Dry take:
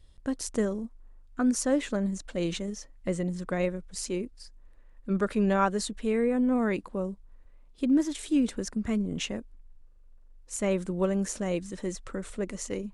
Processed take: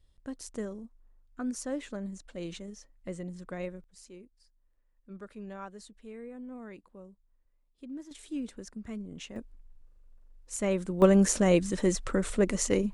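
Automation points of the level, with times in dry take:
−9 dB
from 0:03.84 −18 dB
from 0:08.11 −11 dB
from 0:09.36 −1.5 dB
from 0:11.02 +7 dB

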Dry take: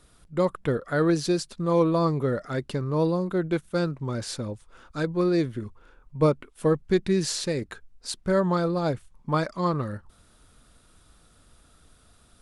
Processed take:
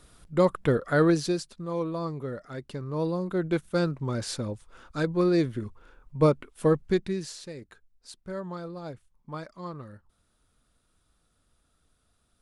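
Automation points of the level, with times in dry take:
0:01.00 +2 dB
0:01.67 −9 dB
0:02.56 −9 dB
0:03.62 0 dB
0:06.85 0 dB
0:07.36 −13 dB

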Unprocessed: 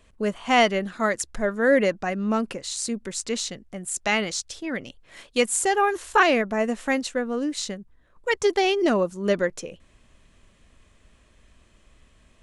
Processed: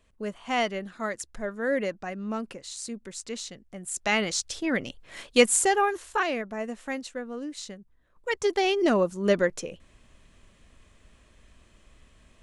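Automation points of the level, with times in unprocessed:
0:03.50 −8 dB
0:04.61 +3 dB
0:05.47 +3 dB
0:06.23 −9 dB
0:07.69 −9 dB
0:09.11 0 dB

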